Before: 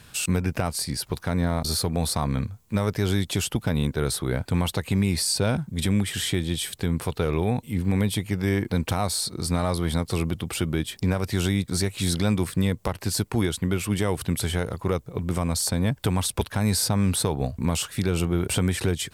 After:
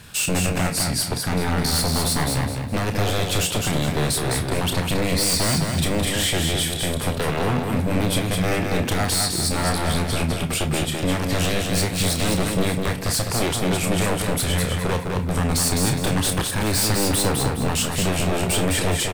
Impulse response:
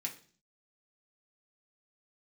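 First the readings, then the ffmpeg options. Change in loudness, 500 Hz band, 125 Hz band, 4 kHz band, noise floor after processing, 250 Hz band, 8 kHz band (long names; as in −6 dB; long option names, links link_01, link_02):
+4.0 dB, +4.0 dB, +1.5 dB, +6.5 dB, −27 dBFS, +1.5 dB, +6.0 dB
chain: -filter_complex "[0:a]aeval=exprs='0.0794*(abs(mod(val(0)/0.0794+3,4)-2)-1)':channel_layout=same,aecho=1:1:207|414|621|828:0.631|0.208|0.0687|0.0227,asplit=2[link_01][link_02];[1:a]atrim=start_sample=2205,adelay=29[link_03];[link_02][link_03]afir=irnorm=-1:irlink=0,volume=-6.5dB[link_04];[link_01][link_04]amix=inputs=2:normalize=0,volume=5dB"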